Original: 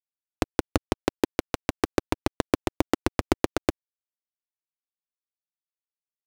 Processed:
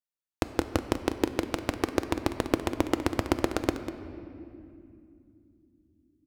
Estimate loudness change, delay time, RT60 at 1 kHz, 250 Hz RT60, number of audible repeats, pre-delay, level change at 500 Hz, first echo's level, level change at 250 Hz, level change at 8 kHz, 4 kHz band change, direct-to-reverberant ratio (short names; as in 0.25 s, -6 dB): -1.5 dB, 0.196 s, 2.3 s, 5.1 s, 1, 6 ms, -1.5 dB, -12.5 dB, -1.0 dB, -2.0 dB, -2.0 dB, 8.0 dB